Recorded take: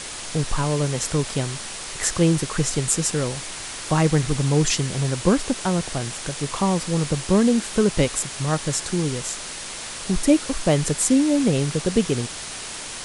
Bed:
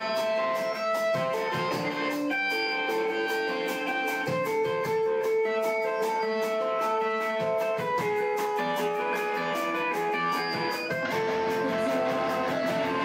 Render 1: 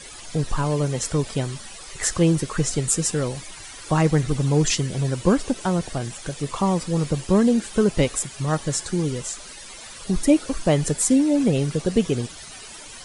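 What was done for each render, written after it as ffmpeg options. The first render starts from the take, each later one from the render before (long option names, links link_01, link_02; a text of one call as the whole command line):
ffmpeg -i in.wav -af "afftdn=noise_reduction=13:noise_floor=-34" out.wav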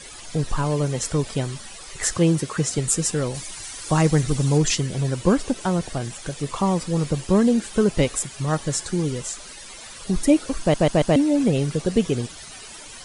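ffmpeg -i in.wav -filter_complex "[0:a]asettb=1/sr,asplit=3[link_01][link_02][link_03];[link_01]atrim=end=2.174[link_04];[link_02]atrim=start=2.17:end=2.78,asetpts=PTS-STARTPTS,afade=type=in:duration=0.004:curve=qsin,afade=type=out:start_time=0.606:duration=0.004:curve=qsin,highpass=78[link_05];[link_03]atrim=start=2.776[link_06];[link_04][link_05]acrossfade=duration=0.004:curve1=hsin:curve2=qsin[link_07];[link_07][link_06]acrossfade=duration=0.004:curve1=qsin:curve2=hsin,asettb=1/sr,asplit=3[link_08][link_09][link_10];[link_08]atrim=end=3.344[link_11];[link_09]atrim=start=3.34:end=4.58,asetpts=PTS-STARTPTS,afade=type=in:duration=0.004:curve=qsin,afade=type=out:start_time=1.236:duration=0.004:curve=qsin,bass=frequency=250:gain=1,treble=frequency=4000:gain=6[link_12];[link_10]atrim=start=4.576[link_13];[link_11][link_12]acrossfade=duration=0.004:curve1=hsin:curve2=qsin[link_14];[link_14][link_13]acrossfade=duration=0.004:curve1=qsin:curve2=hsin,asplit=5[link_15][link_16][link_17][link_18][link_19];[link_15]atrim=end=10.742[link_20];[link_16]atrim=start=10.598:end=10.742[link_21];[link_17]atrim=start=10.598:end=10.742[link_22];[link_18]atrim=start=10.598:end=10.742[link_23];[link_19]atrim=start=11.158[link_24];[link_20][link_21]acrossfade=duration=0.004:curve1=hsin:curve2=hsin[link_25];[link_25][link_22]acrossfade=duration=0.004:curve1=hsin:curve2=hsin[link_26];[link_26][link_23]acrossfade=duration=0.004:curve1=hsin:curve2=hsin[link_27];[link_27][link_24]acrossfade=duration=0.004:curve1=hsin:curve2=hsin" out.wav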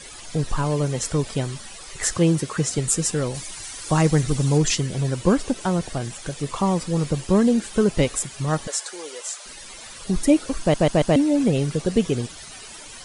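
ffmpeg -i in.wav -filter_complex "[0:a]asettb=1/sr,asplit=3[link_01][link_02][link_03];[link_01]atrim=end=8.674[link_04];[link_02]atrim=start=8.67:end=9.46,asetpts=PTS-STARTPTS,afade=type=in:duration=0.004:curve=qsin,afade=type=out:start_time=0.786:duration=0.004:curve=qsin,highpass=frequency=500:width=0.5412,highpass=frequency=500:width=1.3066[link_05];[link_03]atrim=start=9.456[link_06];[link_04][link_05]acrossfade=duration=0.004:curve1=hsin:curve2=qsin[link_07];[link_07][link_06]acrossfade=duration=0.004:curve1=qsin:curve2=hsin" out.wav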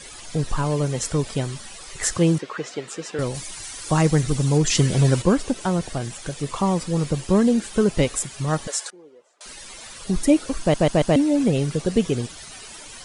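ffmpeg -i in.wav -filter_complex "[0:a]asettb=1/sr,asplit=3[link_01][link_02][link_03];[link_01]atrim=end=2.384[link_04];[link_02]atrim=start=2.38:end=3.19,asetpts=PTS-STARTPTS,afade=type=in:duration=0.004:curve=qsin,afade=type=out:start_time=0.806:duration=0.004:curve=qsin,highpass=370,lowpass=3300[link_05];[link_03]atrim=start=3.186[link_06];[link_04][link_05]acrossfade=duration=0.004:curve1=hsin:curve2=qsin[link_07];[link_07][link_06]acrossfade=duration=0.004:curve1=qsin:curve2=hsin,asettb=1/sr,asplit=3[link_08][link_09][link_10];[link_08]atrim=end=8.904[link_11];[link_09]atrim=start=8.9:end=9.41,asetpts=PTS-STARTPTS,afade=type=in:duration=0.004:curve=qsin,afade=type=out:start_time=0.506:duration=0.004:curve=qsin,bandpass=frequency=150:width_type=q:width=1.3[link_12];[link_10]atrim=start=9.406[link_13];[link_11][link_12]acrossfade=duration=0.004:curve1=hsin:curve2=qsin[link_14];[link_14][link_13]acrossfade=duration=0.004:curve1=qsin:curve2=hsin,asplit=3[link_15][link_16][link_17];[link_15]atrim=end=4.752[link_18];[link_16]atrim=start=4.748:end=5.222,asetpts=PTS-STARTPTS,volume=6.5dB[link_19];[link_17]atrim=start=5.218[link_20];[link_18][link_19]acrossfade=duration=0.004:curve1=hsin:curve2=hsin[link_21];[link_21][link_20]acrossfade=duration=0.004:curve1=hsin:curve2=hsin" out.wav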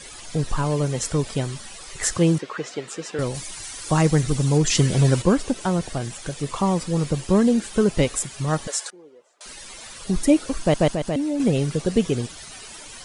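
ffmpeg -i in.wav -filter_complex "[0:a]asettb=1/sr,asplit=3[link_01][link_02][link_03];[link_01]atrim=end=10.884[link_04];[link_02]atrim=start=10.88:end=11.4,asetpts=PTS-STARTPTS,afade=type=in:duration=0.004:curve=qsin,afade=type=out:start_time=0.516:duration=0.004:curve=qsin,acompressor=threshold=-25dB:ratio=2:attack=3.2:release=140:knee=1:detection=peak[link_05];[link_03]atrim=start=11.396[link_06];[link_04][link_05]acrossfade=duration=0.004:curve1=hsin:curve2=qsin[link_07];[link_07][link_06]acrossfade=duration=0.004:curve1=qsin:curve2=hsin" out.wav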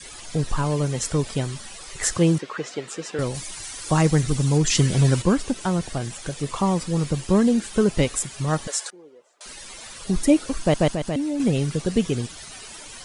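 ffmpeg -i in.wav -af "adynamicequalizer=threshold=0.0224:dfrequency=540:dqfactor=1.1:tfrequency=540:tqfactor=1.1:attack=5:release=100:ratio=0.375:range=2:mode=cutabove:tftype=bell" out.wav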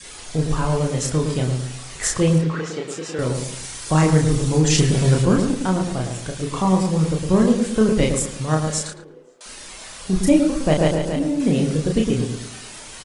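ffmpeg -i in.wav -filter_complex "[0:a]asplit=2[link_01][link_02];[link_02]adelay=32,volume=-3dB[link_03];[link_01][link_03]amix=inputs=2:normalize=0,asplit=2[link_04][link_05];[link_05]adelay=110,lowpass=frequency=1000:poles=1,volume=-4dB,asplit=2[link_06][link_07];[link_07]adelay=110,lowpass=frequency=1000:poles=1,volume=0.44,asplit=2[link_08][link_09];[link_09]adelay=110,lowpass=frequency=1000:poles=1,volume=0.44,asplit=2[link_10][link_11];[link_11]adelay=110,lowpass=frequency=1000:poles=1,volume=0.44,asplit=2[link_12][link_13];[link_13]adelay=110,lowpass=frequency=1000:poles=1,volume=0.44,asplit=2[link_14][link_15];[link_15]adelay=110,lowpass=frequency=1000:poles=1,volume=0.44[link_16];[link_06][link_08][link_10][link_12][link_14][link_16]amix=inputs=6:normalize=0[link_17];[link_04][link_17]amix=inputs=2:normalize=0" out.wav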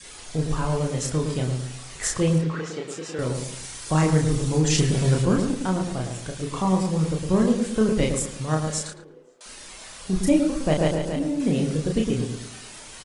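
ffmpeg -i in.wav -af "volume=-4dB" out.wav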